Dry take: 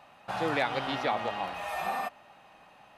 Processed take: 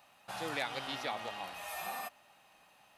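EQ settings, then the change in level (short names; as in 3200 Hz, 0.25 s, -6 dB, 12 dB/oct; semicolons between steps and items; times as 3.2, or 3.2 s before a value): pre-emphasis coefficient 0.8; +3.5 dB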